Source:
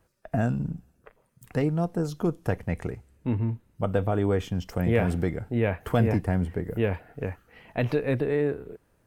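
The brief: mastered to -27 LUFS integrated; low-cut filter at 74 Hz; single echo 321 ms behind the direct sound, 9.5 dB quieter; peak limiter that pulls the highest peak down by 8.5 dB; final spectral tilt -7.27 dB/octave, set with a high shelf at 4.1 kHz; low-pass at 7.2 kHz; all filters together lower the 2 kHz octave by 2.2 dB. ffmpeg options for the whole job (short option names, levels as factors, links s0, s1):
-af "highpass=74,lowpass=7200,equalizer=f=2000:t=o:g=-4.5,highshelf=f=4100:g=8.5,alimiter=limit=0.133:level=0:latency=1,aecho=1:1:321:0.335,volume=1.41"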